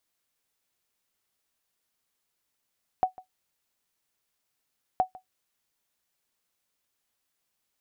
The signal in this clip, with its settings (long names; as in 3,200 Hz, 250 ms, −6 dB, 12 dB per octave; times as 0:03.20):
ping with an echo 745 Hz, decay 0.12 s, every 1.97 s, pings 2, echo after 0.15 s, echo −21.5 dB −14 dBFS